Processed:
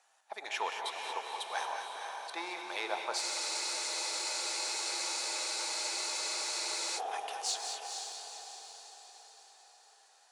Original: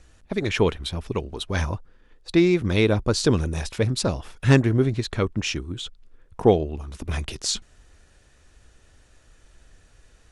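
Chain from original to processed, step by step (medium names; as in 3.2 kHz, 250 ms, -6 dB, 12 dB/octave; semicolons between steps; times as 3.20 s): treble shelf 5.6 kHz +6 dB; saturation -10 dBFS, distortion -17 dB; ladder high-pass 740 Hz, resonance 70%; on a send: echo that smears into a reverb 480 ms, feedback 52%, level -5 dB; on the sum: gated-style reverb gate 250 ms rising, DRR 4.5 dB; spectral freeze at 3.23 s, 3.74 s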